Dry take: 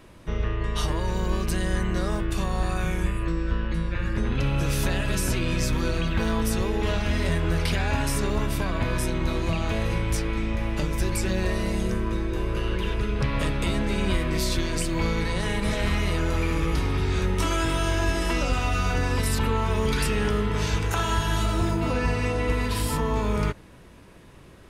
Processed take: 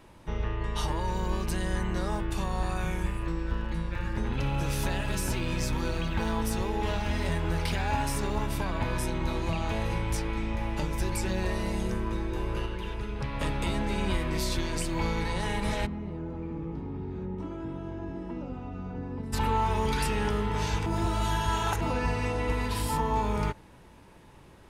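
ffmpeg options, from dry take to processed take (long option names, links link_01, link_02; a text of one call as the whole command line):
ffmpeg -i in.wav -filter_complex "[0:a]asettb=1/sr,asplit=3[link_01][link_02][link_03];[link_01]atrim=end=2.984[link_04];[link_02]atrim=start=2.98:end=8.5,asetpts=PTS-STARTPTS,afade=type=in:duration=0.004:curve=qsin,afade=type=out:start_time=5.516:duration=0.004:curve=qsin,aeval=exprs='sgn(val(0))*max(abs(val(0))-0.00473,0)':channel_layout=same[link_05];[link_03]atrim=start=8.496[link_06];[link_04][link_05]acrossfade=duration=0.004:curve1=hsin:curve2=qsin[link_07];[link_07][link_06]acrossfade=duration=0.004:curve1=qsin:curve2=hsin,asplit=3[link_08][link_09][link_10];[link_08]afade=type=out:start_time=15.85:duration=0.02[link_11];[link_09]bandpass=frequency=220:width_type=q:width=1.2,afade=type=in:start_time=15.85:duration=0.02,afade=type=out:start_time=19.32:duration=0.02[link_12];[link_10]afade=type=in:start_time=19.32:duration=0.02[link_13];[link_11][link_12][link_13]amix=inputs=3:normalize=0,asplit=5[link_14][link_15][link_16][link_17][link_18];[link_14]atrim=end=12.662[link_19];[link_15]atrim=start=12.658:end=13.412,asetpts=PTS-STARTPTS,volume=-4dB[link_20];[link_16]atrim=start=13.408:end=20.862[link_21];[link_17]atrim=start=20.858:end=21.812,asetpts=PTS-STARTPTS,areverse[link_22];[link_18]atrim=start=21.808[link_23];[link_19][link_20]acrossfade=duration=0.004:curve1=hsin:curve2=hsin[link_24];[link_24][link_21]acrossfade=duration=0.004:curve1=hsin:curve2=hsin[link_25];[link_25][link_22]acrossfade=duration=0.004:curve1=hsin:curve2=hsin[link_26];[link_26][link_23]acrossfade=duration=0.004:curve1=hsin:curve2=hsin,equalizer=frequency=870:width=7.2:gain=11,volume=-4.5dB" out.wav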